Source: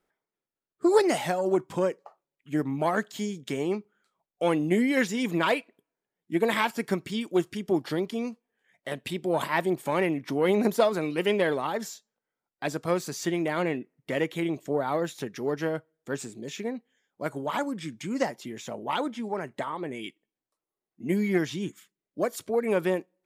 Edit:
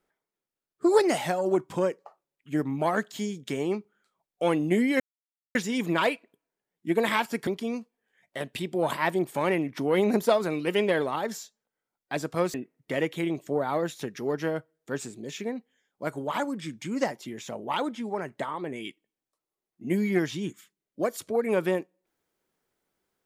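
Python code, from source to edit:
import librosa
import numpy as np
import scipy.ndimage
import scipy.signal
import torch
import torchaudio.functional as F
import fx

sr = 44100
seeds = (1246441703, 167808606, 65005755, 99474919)

y = fx.edit(x, sr, fx.insert_silence(at_s=5.0, length_s=0.55),
    fx.cut(start_s=6.92, length_s=1.06),
    fx.cut(start_s=13.05, length_s=0.68), tone=tone)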